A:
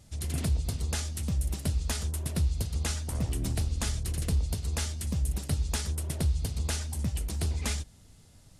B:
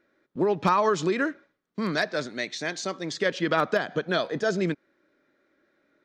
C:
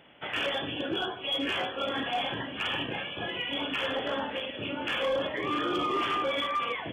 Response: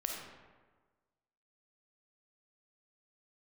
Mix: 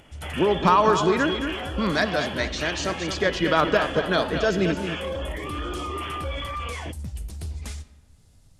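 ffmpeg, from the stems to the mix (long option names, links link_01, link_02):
-filter_complex "[0:a]volume=-9dB,asplit=2[link_01][link_02];[link_02]volume=-10dB[link_03];[1:a]equalizer=frequency=1000:width_type=o:width=0.4:gain=4,volume=0.5dB,asplit=4[link_04][link_05][link_06][link_07];[link_05]volume=-12.5dB[link_08];[link_06]volume=-7dB[link_09];[2:a]lowpass=7700,bandreject=frequency=1600:width=30,volume=1dB[link_10];[link_07]apad=whole_len=379139[link_11];[link_01][link_11]sidechaincompress=threshold=-33dB:ratio=8:attack=16:release=687[link_12];[link_12][link_10]amix=inputs=2:normalize=0,acompressor=mode=upward:threshold=-54dB:ratio=2.5,alimiter=level_in=1.5dB:limit=-24dB:level=0:latency=1:release=29,volume=-1.5dB,volume=0dB[link_13];[3:a]atrim=start_sample=2205[link_14];[link_03][link_08]amix=inputs=2:normalize=0[link_15];[link_15][link_14]afir=irnorm=-1:irlink=0[link_16];[link_09]aecho=0:1:223|446|669|892|1115:1|0.36|0.13|0.0467|0.0168[link_17];[link_04][link_13][link_16][link_17]amix=inputs=4:normalize=0,lowshelf=frequency=78:gain=8"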